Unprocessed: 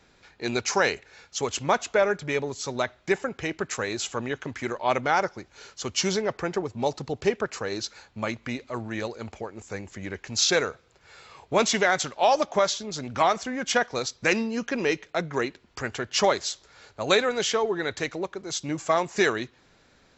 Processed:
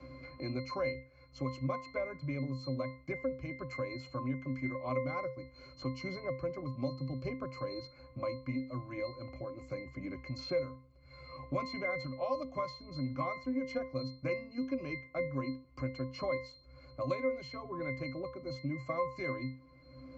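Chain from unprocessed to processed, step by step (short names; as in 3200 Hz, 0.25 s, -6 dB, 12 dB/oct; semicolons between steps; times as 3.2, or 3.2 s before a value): octave resonator C, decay 0.33 s; three-band squash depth 70%; gain +7 dB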